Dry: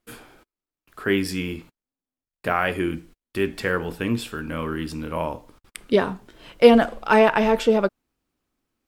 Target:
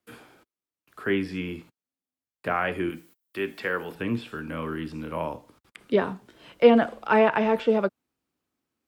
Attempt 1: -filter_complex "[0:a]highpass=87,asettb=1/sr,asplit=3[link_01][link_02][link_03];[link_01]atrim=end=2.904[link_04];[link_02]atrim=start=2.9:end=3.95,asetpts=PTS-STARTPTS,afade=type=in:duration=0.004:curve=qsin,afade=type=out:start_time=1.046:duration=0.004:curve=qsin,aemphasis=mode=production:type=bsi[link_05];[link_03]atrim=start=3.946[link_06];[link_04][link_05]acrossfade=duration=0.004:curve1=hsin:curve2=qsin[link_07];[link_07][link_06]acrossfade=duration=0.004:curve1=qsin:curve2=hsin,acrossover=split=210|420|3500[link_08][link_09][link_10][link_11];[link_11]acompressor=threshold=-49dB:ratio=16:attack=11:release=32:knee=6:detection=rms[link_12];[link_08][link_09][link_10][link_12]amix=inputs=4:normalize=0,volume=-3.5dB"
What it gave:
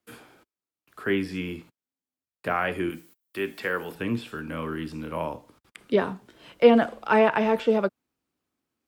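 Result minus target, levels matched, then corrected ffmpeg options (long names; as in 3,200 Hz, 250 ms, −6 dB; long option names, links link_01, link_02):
downward compressor: peak gain reduction −5.5 dB
-filter_complex "[0:a]highpass=87,asettb=1/sr,asplit=3[link_01][link_02][link_03];[link_01]atrim=end=2.904[link_04];[link_02]atrim=start=2.9:end=3.95,asetpts=PTS-STARTPTS,afade=type=in:duration=0.004:curve=qsin,afade=type=out:start_time=1.046:duration=0.004:curve=qsin,aemphasis=mode=production:type=bsi[link_05];[link_03]atrim=start=3.946[link_06];[link_04][link_05]acrossfade=duration=0.004:curve1=hsin:curve2=qsin[link_07];[link_07][link_06]acrossfade=duration=0.004:curve1=qsin:curve2=hsin,acrossover=split=210|420|3500[link_08][link_09][link_10][link_11];[link_11]acompressor=threshold=-55dB:ratio=16:attack=11:release=32:knee=6:detection=rms[link_12];[link_08][link_09][link_10][link_12]amix=inputs=4:normalize=0,volume=-3.5dB"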